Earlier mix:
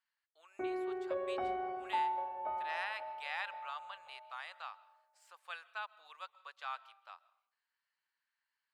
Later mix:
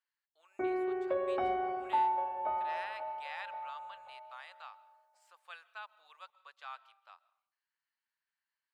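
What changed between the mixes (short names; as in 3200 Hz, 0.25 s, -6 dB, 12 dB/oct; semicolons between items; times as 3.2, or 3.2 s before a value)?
speech -4.0 dB; background +4.5 dB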